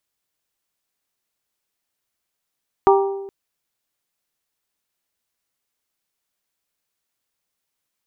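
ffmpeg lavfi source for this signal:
ffmpeg -f lavfi -i "aevalsrc='0.316*pow(10,-3*t/1.1)*sin(2*PI*393*t)+0.237*pow(10,-3*t/0.677)*sin(2*PI*786*t)+0.178*pow(10,-3*t/0.596)*sin(2*PI*943.2*t)+0.133*pow(10,-3*t/0.51)*sin(2*PI*1179*t)':duration=0.42:sample_rate=44100" out.wav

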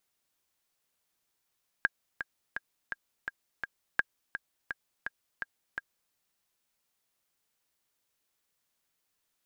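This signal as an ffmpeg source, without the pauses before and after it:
ffmpeg -f lavfi -i "aevalsrc='pow(10,(-11-10*gte(mod(t,6*60/168),60/168))/20)*sin(2*PI*1620*mod(t,60/168))*exp(-6.91*mod(t,60/168)/0.03)':duration=4.28:sample_rate=44100" out.wav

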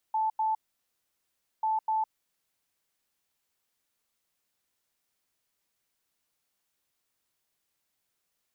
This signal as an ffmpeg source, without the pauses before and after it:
ffmpeg -f lavfi -i "aevalsrc='0.0596*sin(2*PI*876*t)*clip(min(mod(mod(t,1.49),0.25),0.16-mod(mod(t,1.49),0.25))/0.005,0,1)*lt(mod(t,1.49),0.5)':duration=2.98:sample_rate=44100" out.wav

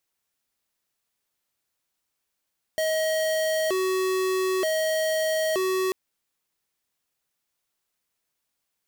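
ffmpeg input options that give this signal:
ffmpeg -f lavfi -i "aevalsrc='0.0596*(2*lt(mod((504*t+129/0.54*(0.5-abs(mod(0.54*t,1)-0.5))),1),0.5)-1)':duration=3.14:sample_rate=44100" out.wav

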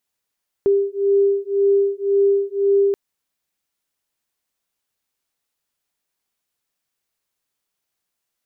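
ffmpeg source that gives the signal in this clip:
ffmpeg -f lavfi -i "aevalsrc='0.133*(sin(2*PI*397*t)+sin(2*PI*398.9*t))':duration=2.28:sample_rate=44100" out.wav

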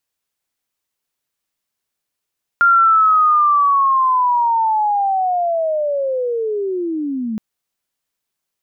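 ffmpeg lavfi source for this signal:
ffmpeg -f lavfi -i "aevalsrc='pow(10,(-8-11.5*t/4.77)/20)*sin(2*PI*(1400*t-1190*t*t/(2*4.77)))':duration=4.77:sample_rate=44100" out.wav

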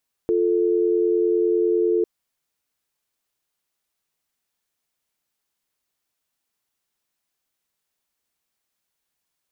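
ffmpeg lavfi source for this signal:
ffmpeg -f lavfi -i "aevalsrc='0.106*(sin(2*PI*350*t)+sin(2*PI*440*t))':duration=1.75:sample_rate=44100" out.wav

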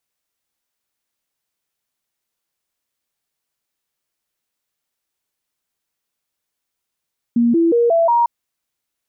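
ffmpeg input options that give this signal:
ffmpeg -f lavfi -i "aevalsrc='0.282*clip(min(mod(t,0.18),0.18-mod(t,0.18))/0.005,0,1)*sin(2*PI*236*pow(2,floor(t/0.18)/2)*mod(t,0.18))':duration=0.9:sample_rate=44100" out.wav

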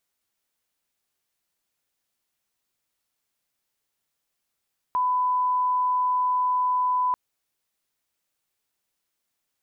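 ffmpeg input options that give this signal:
ffmpeg -f lavfi -i "sine=frequency=1000:duration=2.19:sample_rate=44100,volume=-1.94dB" out.wav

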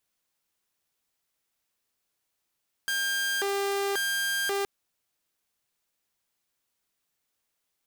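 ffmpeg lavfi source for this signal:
ffmpeg -f lavfi -i "aevalsrc='0.0668*(2*mod((999*t+601/0.93*(0.5-abs(mod(0.93*t,1)-0.5))),1)-1)':duration=1.77:sample_rate=44100" out.wav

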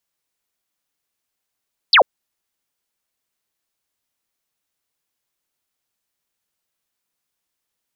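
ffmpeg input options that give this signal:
ffmpeg -f lavfi -i "aevalsrc='0.447*clip(t/0.002,0,1)*clip((0.09-t)/0.002,0,1)*sin(2*PI*5200*0.09/log(450/5200)*(exp(log(450/5200)*t/0.09)-1))':duration=0.09:sample_rate=44100" out.wav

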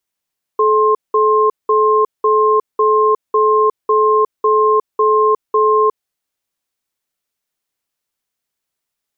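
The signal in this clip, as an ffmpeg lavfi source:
ffmpeg -f lavfi -i "aevalsrc='0.251*(sin(2*PI*431*t)+sin(2*PI*1060*t))*clip(min(mod(t,0.55),0.36-mod(t,0.55))/0.005,0,1)':duration=5.46:sample_rate=44100" out.wav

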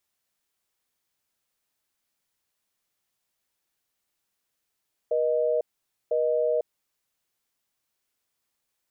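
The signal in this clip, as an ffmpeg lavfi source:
ffmpeg -f lavfi -i "aevalsrc='0.0631*(sin(2*PI*480*t)+sin(2*PI*620*t))*clip(min(mod(t,1),0.5-mod(t,1))/0.005,0,1)':duration=1.77:sample_rate=44100" out.wav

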